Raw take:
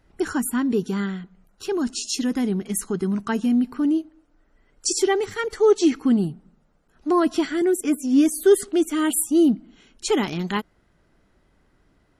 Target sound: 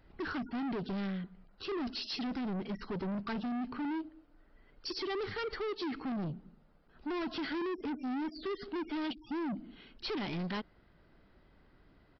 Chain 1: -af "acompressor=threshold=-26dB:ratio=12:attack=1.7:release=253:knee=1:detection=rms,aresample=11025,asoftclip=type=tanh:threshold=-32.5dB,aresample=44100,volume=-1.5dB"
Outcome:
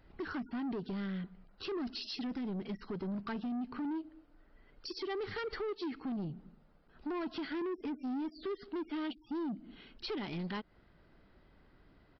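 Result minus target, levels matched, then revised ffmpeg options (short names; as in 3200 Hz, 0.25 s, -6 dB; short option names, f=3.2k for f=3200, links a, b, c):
compressor: peak gain reduction +7.5 dB
-af "acompressor=threshold=-18dB:ratio=12:attack=1.7:release=253:knee=1:detection=rms,aresample=11025,asoftclip=type=tanh:threshold=-32.5dB,aresample=44100,volume=-1.5dB"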